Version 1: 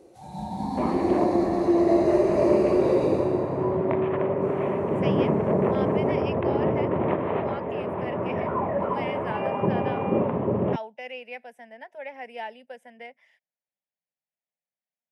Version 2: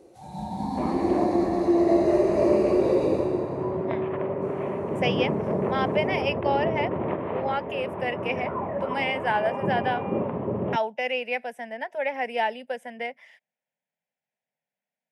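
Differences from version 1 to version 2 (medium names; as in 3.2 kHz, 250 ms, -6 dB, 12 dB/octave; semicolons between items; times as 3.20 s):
speech +10.0 dB; second sound -3.5 dB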